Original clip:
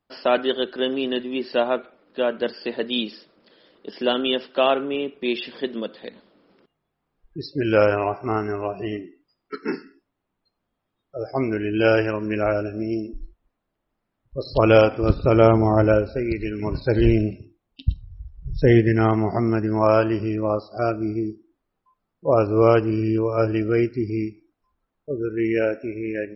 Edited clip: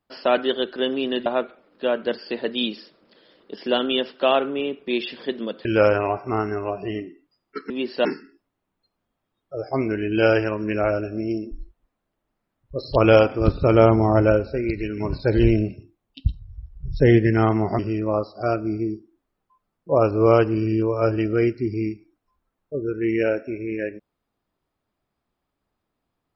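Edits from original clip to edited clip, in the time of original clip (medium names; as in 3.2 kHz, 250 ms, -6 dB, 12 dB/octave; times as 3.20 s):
1.26–1.61 s: move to 9.67 s
6.00–7.62 s: delete
19.41–20.15 s: delete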